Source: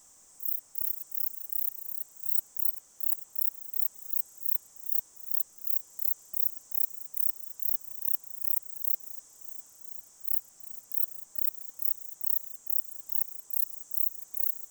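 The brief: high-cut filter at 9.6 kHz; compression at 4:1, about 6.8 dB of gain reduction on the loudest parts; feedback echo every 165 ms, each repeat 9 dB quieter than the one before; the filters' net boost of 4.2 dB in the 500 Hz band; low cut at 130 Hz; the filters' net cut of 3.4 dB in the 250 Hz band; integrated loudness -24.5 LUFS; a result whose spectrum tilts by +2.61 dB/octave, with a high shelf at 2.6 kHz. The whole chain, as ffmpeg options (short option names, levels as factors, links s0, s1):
-af "highpass=130,lowpass=9600,equalizer=f=250:t=o:g=-7,equalizer=f=500:t=o:g=6.5,highshelf=f=2600:g=7.5,acompressor=threshold=0.00891:ratio=4,aecho=1:1:165|330|495|660:0.355|0.124|0.0435|0.0152,volume=9.44"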